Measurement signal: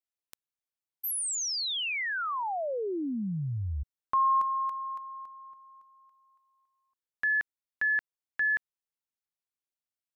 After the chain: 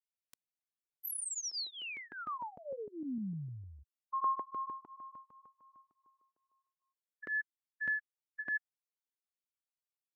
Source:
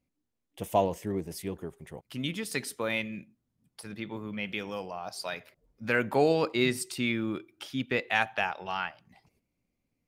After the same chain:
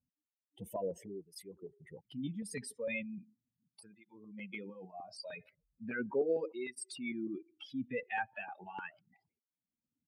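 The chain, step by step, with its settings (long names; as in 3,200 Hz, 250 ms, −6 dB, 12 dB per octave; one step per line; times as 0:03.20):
expanding power law on the bin magnitudes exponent 2.3
auto-filter notch saw up 6.6 Hz 320–1,500 Hz
through-zero flanger with one copy inverted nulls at 0.37 Hz, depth 3.1 ms
level −4.5 dB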